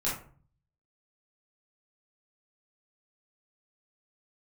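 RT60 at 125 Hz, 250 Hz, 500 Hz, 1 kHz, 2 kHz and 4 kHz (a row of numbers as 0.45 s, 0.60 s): 0.85 s, 0.60 s, 0.45 s, 0.45 s, 0.35 s, 0.25 s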